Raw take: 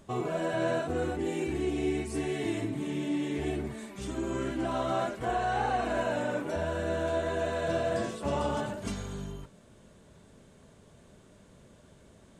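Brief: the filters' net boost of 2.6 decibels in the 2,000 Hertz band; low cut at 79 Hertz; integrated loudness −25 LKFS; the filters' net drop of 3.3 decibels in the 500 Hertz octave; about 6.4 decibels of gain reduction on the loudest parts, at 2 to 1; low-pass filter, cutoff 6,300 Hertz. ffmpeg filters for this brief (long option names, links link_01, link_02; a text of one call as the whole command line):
ffmpeg -i in.wav -af "highpass=79,lowpass=6300,equalizer=frequency=500:width_type=o:gain=-5,equalizer=frequency=2000:width_type=o:gain=4,acompressor=threshold=-39dB:ratio=2,volume=14dB" out.wav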